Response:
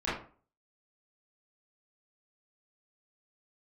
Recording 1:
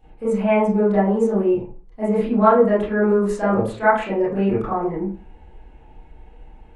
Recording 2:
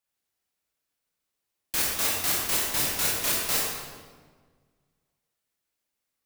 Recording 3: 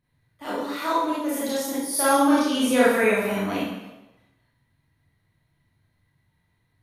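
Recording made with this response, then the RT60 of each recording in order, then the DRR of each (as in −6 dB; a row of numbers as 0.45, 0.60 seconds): 1; 0.40, 1.5, 1.0 seconds; −11.5, −5.0, −9.5 decibels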